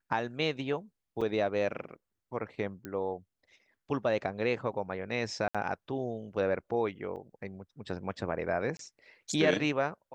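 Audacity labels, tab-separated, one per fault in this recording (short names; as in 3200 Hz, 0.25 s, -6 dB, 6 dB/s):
1.210000	1.220000	gap 5.4 ms
2.850000	2.850000	pop -26 dBFS
5.480000	5.550000	gap 66 ms
7.160000	7.170000	gap 7.6 ms
8.770000	8.790000	gap 23 ms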